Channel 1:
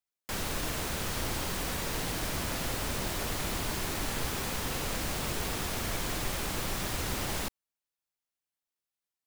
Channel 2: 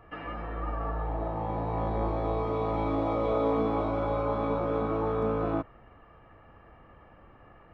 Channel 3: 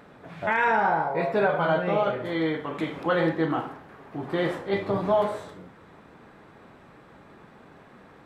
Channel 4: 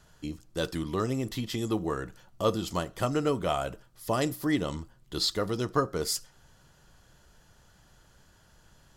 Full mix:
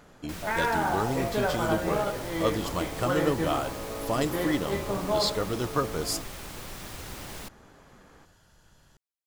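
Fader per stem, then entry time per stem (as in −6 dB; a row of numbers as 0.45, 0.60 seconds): −7.0, −10.5, −5.0, −0.5 decibels; 0.00, 0.60, 0.00, 0.00 seconds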